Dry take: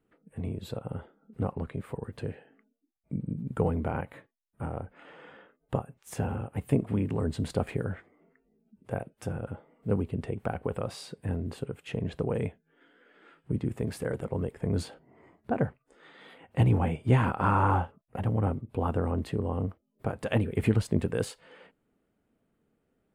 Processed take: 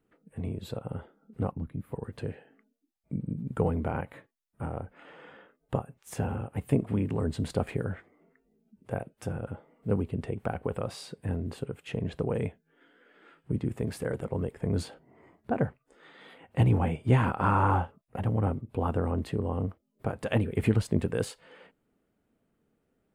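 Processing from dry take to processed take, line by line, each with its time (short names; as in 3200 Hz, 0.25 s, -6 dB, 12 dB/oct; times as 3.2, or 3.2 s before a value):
1.52–1.92 spectral gain 330–10000 Hz -13 dB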